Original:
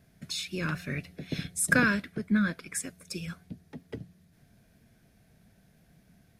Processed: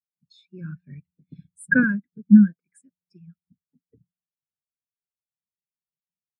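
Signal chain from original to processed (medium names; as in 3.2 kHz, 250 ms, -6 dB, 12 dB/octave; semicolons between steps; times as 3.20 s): spectral contrast expander 2.5:1; trim +7 dB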